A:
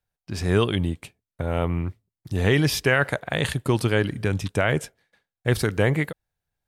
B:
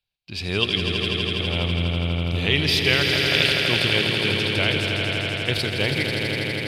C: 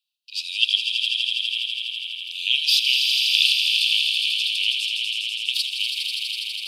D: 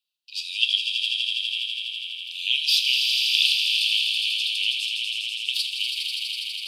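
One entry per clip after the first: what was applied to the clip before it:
high-order bell 3.3 kHz +15.5 dB 1.3 oct; on a send: echo with a slow build-up 82 ms, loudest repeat 5, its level -7 dB; on the sum: trim -6 dB
steep high-pass 2.6 kHz 96 dB/octave; trim +4 dB
reverberation RT60 0.45 s, pre-delay 7 ms, DRR 8 dB; trim -2.5 dB

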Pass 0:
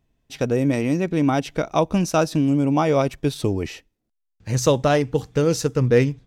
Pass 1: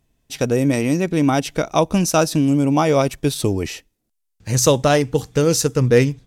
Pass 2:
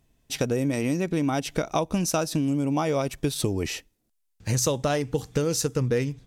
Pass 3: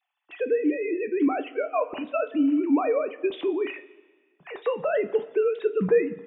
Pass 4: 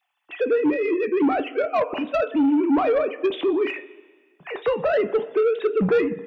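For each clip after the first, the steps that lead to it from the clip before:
peaking EQ 11 kHz +9.5 dB 1.8 oct; trim +2.5 dB
compression 5:1, threshold -22 dBFS, peak gain reduction 12.5 dB
formants replaced by sine waves; two-slope reverb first 0.2 s, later 1.6 s, from -18 dB, DRR 5.5 dB
saturation -21 dBFS, distortion -13 dB; trim +6.5 dB

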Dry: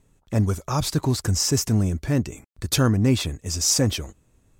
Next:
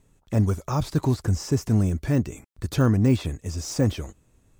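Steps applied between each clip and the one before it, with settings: de-esser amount 95%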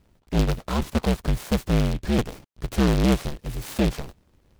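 cycle switcher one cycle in 2, inverted; treble shelf 8.2 kHz -10 dB; delay time shaken by noise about 2.5 kHz, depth 0.076 ms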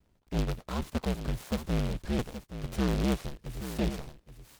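vibrato 1.4 Hz 56 cents; delay 823 ms -11 dB; trim -8.5 dB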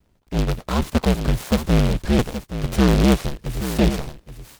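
level rider gain up to 6.5 dB; trim +6 dB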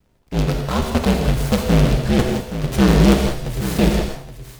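reverberation, pre-delay 3 ms, DRR 2 dB; trim +1 dB

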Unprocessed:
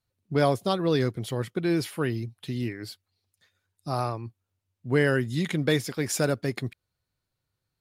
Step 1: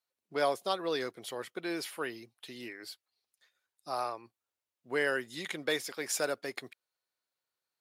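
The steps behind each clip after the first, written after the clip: high-pass 510 Hz 12 dB/octave; trim -3.5 dB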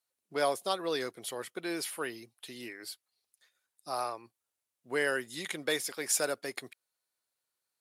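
peaking EQ 10 kHz +8 dB 1 oct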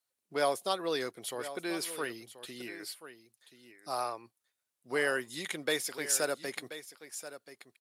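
delay 1032 ms -13.5 dB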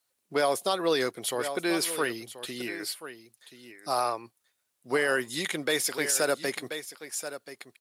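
peak limiter -23 dBFS, peak gain reduction 7.5 dB; trim +8 dB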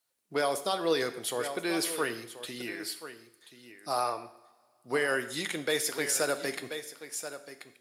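two-slope reverb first 0.68 s, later 2.6 s, from -20 dB, DRR 9 dB; trim -3 dB

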